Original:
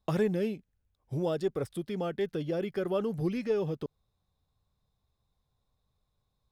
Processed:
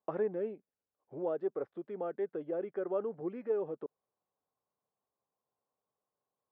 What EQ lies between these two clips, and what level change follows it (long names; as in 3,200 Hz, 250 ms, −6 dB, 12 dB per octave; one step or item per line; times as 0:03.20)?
flat-topped band-pass 790 Hz, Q 0.56
low-pass filter 1,100 Hz 6 dB per octave
−1.5 dB